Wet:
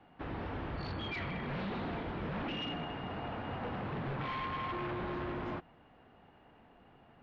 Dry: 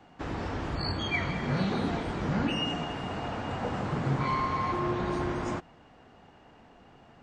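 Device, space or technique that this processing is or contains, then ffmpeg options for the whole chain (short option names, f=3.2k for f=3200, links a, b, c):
synthesiser wavefolder: -af "aeval=exprs='0.0447*(abs(mod(val(0)/0.0447+3,4)-2)-1)':c=same,lowpass=f=3.5k:w=0.5412,lowpass=f=3.5k:w=1.3066,volume=-5.5dB"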